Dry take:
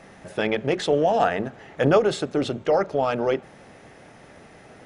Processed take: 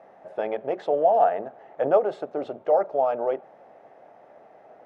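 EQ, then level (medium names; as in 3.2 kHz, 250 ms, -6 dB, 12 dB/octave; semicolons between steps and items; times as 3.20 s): band-pass filter 680 Hz, Q 2.5; +3.0 dB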